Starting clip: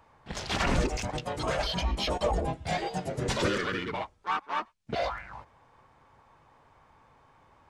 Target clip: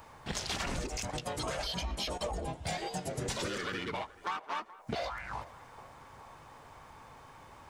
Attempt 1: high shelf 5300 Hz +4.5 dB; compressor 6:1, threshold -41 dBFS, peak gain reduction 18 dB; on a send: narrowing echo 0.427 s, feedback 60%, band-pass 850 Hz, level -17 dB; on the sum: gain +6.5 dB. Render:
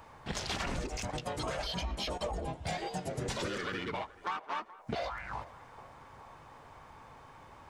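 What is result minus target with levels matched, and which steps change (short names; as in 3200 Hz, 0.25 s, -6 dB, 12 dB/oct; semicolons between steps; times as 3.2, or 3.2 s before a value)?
8000 Hz band -3.5 dB
change: high shelf 5300 Hz +12 dB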